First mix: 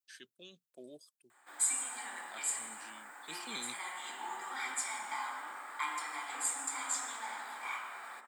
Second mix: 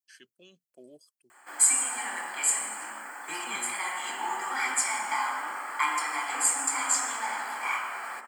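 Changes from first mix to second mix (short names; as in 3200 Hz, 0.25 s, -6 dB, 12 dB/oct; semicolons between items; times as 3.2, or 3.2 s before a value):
background +10.0 dB; master: add Butterworth band-stop 3700 Hz, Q 5.4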